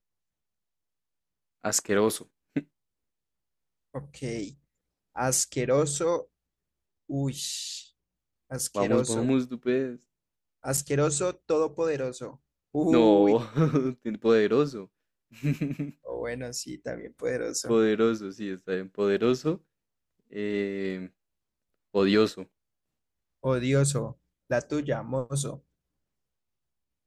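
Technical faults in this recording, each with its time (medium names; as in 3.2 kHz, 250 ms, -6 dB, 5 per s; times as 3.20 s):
10.77–10.78 s: dropout 5.7 ms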